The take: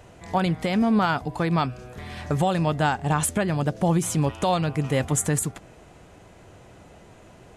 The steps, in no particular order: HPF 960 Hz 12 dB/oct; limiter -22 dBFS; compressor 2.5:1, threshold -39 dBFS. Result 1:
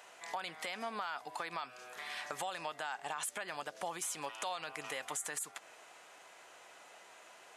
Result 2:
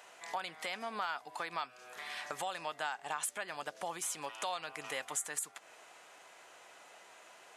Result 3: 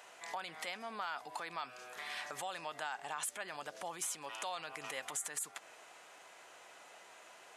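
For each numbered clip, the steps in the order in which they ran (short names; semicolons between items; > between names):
HPF > limiter > compressor; HPF > compressor > limiter; limiter > HPF > compressor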